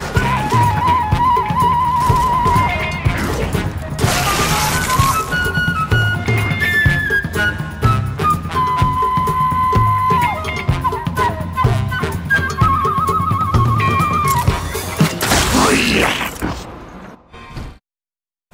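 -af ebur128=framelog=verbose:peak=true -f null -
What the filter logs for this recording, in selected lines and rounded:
Integrated loudness:
  I:         -15.6 LUFS
  Threshold: -26.0 LUFS
Loudness range:
  LRA:         1.9 LU
  Threshold: -35.9 LUFS
  LRA low:   -16.8 LUFS
  LRA high:  -14.9 LUFS
True peak:
  Peak:       -1.9 dBFS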